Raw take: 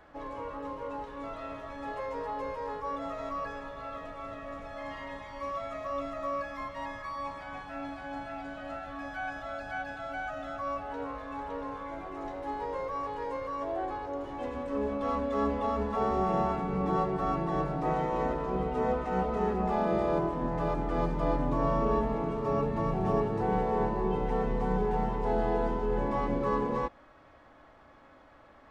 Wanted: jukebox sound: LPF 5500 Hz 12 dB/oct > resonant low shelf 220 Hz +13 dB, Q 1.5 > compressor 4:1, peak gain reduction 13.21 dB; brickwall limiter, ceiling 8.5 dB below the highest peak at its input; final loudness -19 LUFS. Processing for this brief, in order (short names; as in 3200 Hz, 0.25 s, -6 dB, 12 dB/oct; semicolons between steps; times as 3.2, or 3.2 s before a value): limiter -24 dBFS; LPF 5500 Hz 12 dB/oct; resonant low shelf 220 Hz +13 dB, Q 1.5; compressor 4:1, threshold -32 dBFS; gain +18 dB